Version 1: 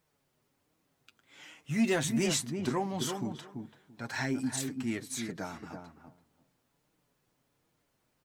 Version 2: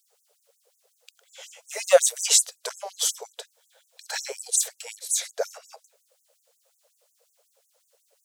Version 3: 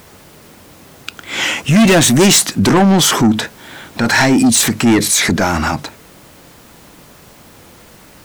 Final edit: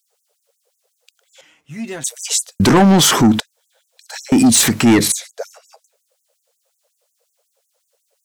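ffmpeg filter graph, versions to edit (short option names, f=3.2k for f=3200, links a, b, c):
-filter_complex "[2:a]asplit=2[a][b];[1:a]asplit=4[c][d][e][f];[c]atrim=end=1.412[g];[0:a]atrim=start=1.408:end=2.042[h];[d]atrim=start=2.038:end=2.602[i];[a]atrim=start=2.598:end=3.402[j];[e]atrim=start=3.398:end=4.322[k];[b]atrim=start=4.318:end=5.122[l];[f]atrim=start=5.118[m];[g][h]acrossfade=d=0.004:c1=hsin:c2=hsin[n];[n][i]acrossfade=d=0.004:c1=hsin:c2=hsin[o];[o][j]acrossfade=d=0.004:c1=hsin:c2=hsin[p];[p][k]acrossfade=d=0.004:c1=hsin:c2=hsin[q];[q][l]acrossfade=d=0.004:c1=hsin:c2=hsin[r];[r][m]acrossfade=d=0.004:c1=hsin:c2=hsin"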